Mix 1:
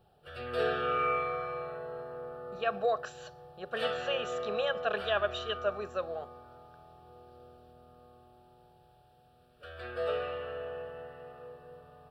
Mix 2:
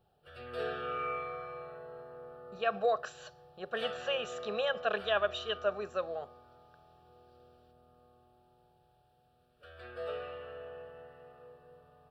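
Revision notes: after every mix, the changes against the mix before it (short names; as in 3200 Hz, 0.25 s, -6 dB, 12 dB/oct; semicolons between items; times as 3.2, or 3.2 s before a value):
background -6.5 dB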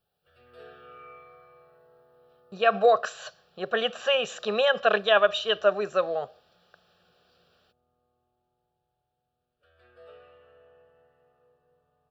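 speech +10.0 dB; background -11.5 dB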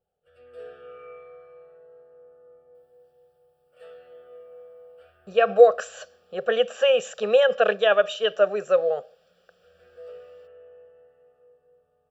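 speech: entry +2.75 s; master: add thirty-one-band EQ 125 Hz -9 dB, 315 Hz -8 dB, 500 Hz +11 dB, 1000 Hz -9 dB, 4000 Hz -9 dB, 8000 Hz +8 dB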